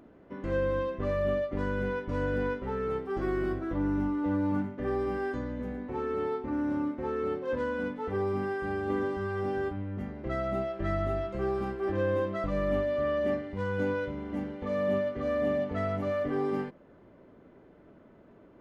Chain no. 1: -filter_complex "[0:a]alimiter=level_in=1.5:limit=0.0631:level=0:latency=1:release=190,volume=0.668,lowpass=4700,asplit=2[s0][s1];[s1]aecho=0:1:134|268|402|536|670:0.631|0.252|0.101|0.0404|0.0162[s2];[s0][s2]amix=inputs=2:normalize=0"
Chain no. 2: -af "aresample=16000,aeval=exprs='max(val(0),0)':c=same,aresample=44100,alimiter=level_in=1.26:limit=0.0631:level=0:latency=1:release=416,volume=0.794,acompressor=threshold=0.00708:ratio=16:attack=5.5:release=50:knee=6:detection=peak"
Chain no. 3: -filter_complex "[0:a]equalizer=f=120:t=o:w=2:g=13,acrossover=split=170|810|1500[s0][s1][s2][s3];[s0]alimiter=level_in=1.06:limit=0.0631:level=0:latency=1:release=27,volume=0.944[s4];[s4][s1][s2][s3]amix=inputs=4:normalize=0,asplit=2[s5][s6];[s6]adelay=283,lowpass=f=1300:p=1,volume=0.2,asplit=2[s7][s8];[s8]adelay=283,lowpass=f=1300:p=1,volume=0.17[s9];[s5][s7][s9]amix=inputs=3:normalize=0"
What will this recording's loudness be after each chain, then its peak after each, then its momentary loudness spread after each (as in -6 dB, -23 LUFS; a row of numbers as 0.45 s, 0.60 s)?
-35.0 LUFS, -48.5 LUFS, -27.0 LUFS; -22.5 dBFS, -33.0 dBFS, -13.0 dBFS; 4 LU, 4 LU, 4 LU